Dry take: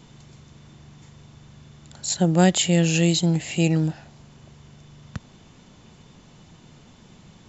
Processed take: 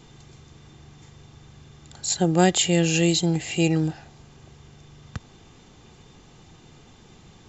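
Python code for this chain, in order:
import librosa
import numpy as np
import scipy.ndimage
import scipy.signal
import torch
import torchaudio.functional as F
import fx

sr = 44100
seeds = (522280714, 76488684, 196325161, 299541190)

y = x + 0.37 * np.pad(x, (int(2.5 * sr / 1000.0), 0))[:len(x)]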